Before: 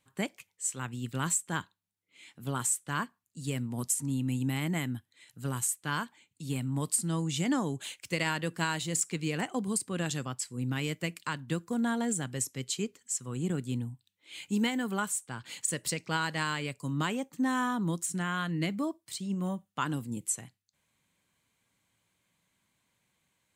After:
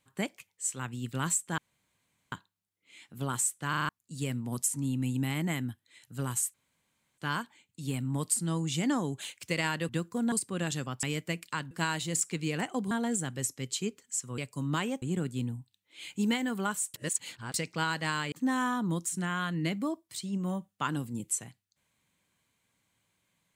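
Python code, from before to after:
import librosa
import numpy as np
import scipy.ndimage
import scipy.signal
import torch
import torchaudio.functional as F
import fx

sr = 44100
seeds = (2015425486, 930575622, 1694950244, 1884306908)

y = fx.edit(x, sr, fx.insert_room_tone(at_s=1.58, length_s=0.74),
    fx.stutter_over(start_s=2.95, slice_s=0.04, count=5),
    fx.insert_room_tone(at_s=5.8, length_s=0.64),
    fx.swap(start_s=8.51, length_s=1.2, other_s=11.45, other_length_s=0.43),
    fx.cut(start_s=10.42, length_s=0.35),
    fx.reverse_span(start_s=15.27, length_s=0.6),
    fx.move(start_s=16.65, length_s=0.64, to_s=13.35), tone=tone)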